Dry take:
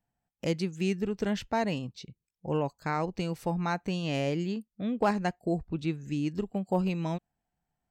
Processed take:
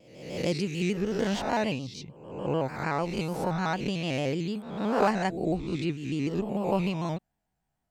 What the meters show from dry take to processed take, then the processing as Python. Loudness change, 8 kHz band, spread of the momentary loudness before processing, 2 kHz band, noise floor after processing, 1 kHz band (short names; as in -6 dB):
+2.0 dB, +4.0 dB, 6 LU, +3.5 dB, -81 dBFS, +2.5 dB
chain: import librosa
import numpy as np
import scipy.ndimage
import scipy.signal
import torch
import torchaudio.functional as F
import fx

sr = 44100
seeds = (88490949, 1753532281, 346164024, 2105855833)

y = fx.spec_swells(x, sr, rise_s=0.86)
y = fx.vibrato_shape(y, sr, shape='square', rate_hz=6.7, depth_cents=100.0)